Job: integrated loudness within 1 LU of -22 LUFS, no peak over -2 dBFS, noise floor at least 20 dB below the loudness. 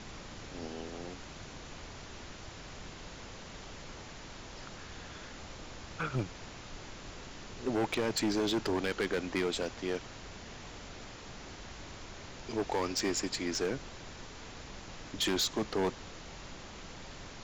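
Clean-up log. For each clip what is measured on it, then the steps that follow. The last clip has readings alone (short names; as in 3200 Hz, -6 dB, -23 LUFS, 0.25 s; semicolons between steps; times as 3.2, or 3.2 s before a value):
clipped 1.4%; flat tops at -26.0 dBFS; noise floor -48 dBFS; noise floor target -58 dBFS; loudness -37.5 LUFS; peak -26.0 dBFS; loudness target -22.0 LUFS
-> clip repair -26 dBFS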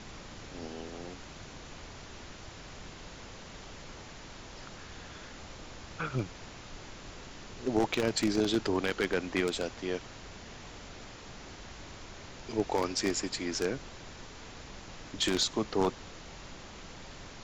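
clipped 0.0%; noise floor -48 dBFS; noise floor target -53 dBFS
-> noise print and reduce 6 dB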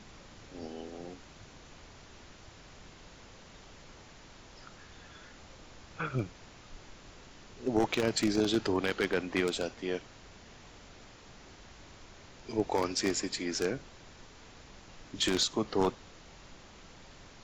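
noise floor -54 dBFS; loudness -32.0 LUFS; peak -17.0 dBFS; loudness target -22.0 LUFS
-> gain +10 dB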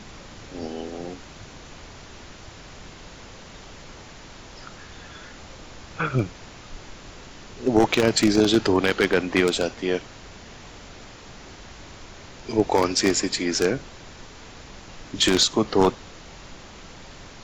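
loudness -22.0 LUFS; peak -7.0 dBFS; noise floor -44 dBFS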